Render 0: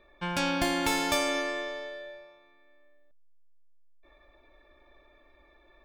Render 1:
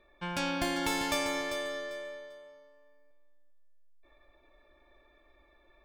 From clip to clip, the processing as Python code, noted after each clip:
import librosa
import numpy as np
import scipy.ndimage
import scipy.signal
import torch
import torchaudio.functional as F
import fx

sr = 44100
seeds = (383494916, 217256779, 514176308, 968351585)

y = fx.echo_feedback(x, sr, ms=395, feedback_pct=21, wet_db=-9)
y = F.gain(torch.from_numpy(y), -4.0).numpy()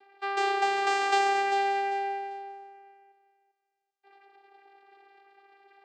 y = fx.low_shelf_res(x, sr, hz=390.0, db=-13.0, q=1.5)
y = fx.vocoder(y, sr, bands=8, carrier='saw', carrier_hz=396.0)
y = F.gain(torch.from_numpy(y), 7.5).numpy()